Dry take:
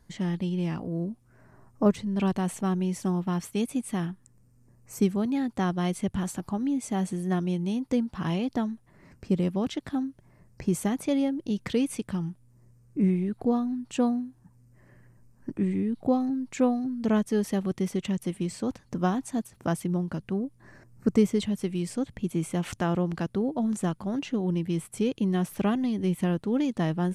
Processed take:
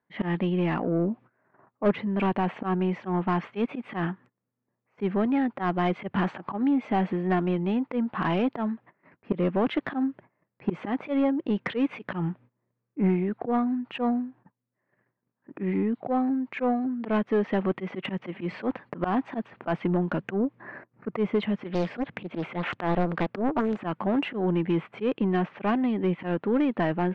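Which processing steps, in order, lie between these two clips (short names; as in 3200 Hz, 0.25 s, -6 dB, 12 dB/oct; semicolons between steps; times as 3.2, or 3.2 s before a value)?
LPF 2700 Hz 24 dB/oct; gate -51 dBFS, range -24 dB; HPF 140 Hz 12 dB/oct; vocal rider 0.5 s; auto swell 0.104 s; overdrive pedal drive 18 dB, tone 2000 Hz, clips at -14 dBFS; 21.66–23.77 Doppler distortion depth 0.82 ms; gain +1 dB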